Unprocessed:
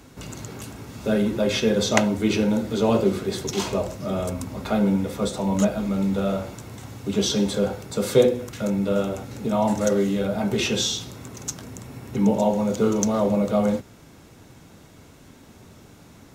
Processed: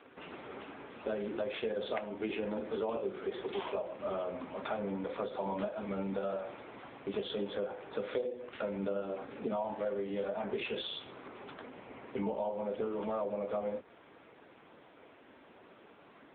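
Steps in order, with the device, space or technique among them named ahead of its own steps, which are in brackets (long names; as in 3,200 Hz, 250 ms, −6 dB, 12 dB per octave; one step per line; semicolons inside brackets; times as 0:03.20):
0:08.82–0:09.56: dynamic equaliser 190 Hz, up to +4 dB, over −36 dBFS, Q 0.74
voicemail (band-pass filter 420–3,100 Hz; downward compressor 10 to 1, threshold −31 dBFS, peak gain reduction 18 dB; AMR narrowband 6.7 kbit/s 8,000 Hz)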